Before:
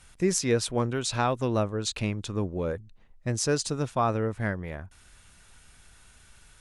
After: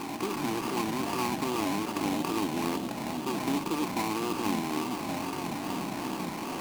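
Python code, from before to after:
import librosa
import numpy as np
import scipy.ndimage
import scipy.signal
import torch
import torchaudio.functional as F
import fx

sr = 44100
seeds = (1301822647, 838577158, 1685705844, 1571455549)

y = fx.bin_compress(x, sr, power=0.2)
y = fx.vowel_filter(y, sr, vowel='u')
y = fx.small_body(y, sr, hz=(1100.0, 1600.0, 2500.0), ring_ms=45, db=13)
y = fx.echo_pitch(y, sr, ms=91, semitones=-4, count=3, db_per_echo=-6.0)
y = fx.sample_hold(y, sr, seeds[0], rate_hz=3500.0, jitter_pct=20)
y = fx.wow_flutter(y, sr, seeds[1], rate_hz=2.1, depth_cents=130.0)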